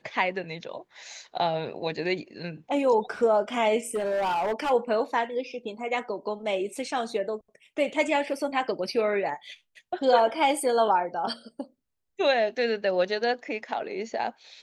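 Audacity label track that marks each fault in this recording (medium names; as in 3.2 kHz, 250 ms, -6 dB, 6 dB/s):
3.950000	4.710000	clipped -23.5 dBFS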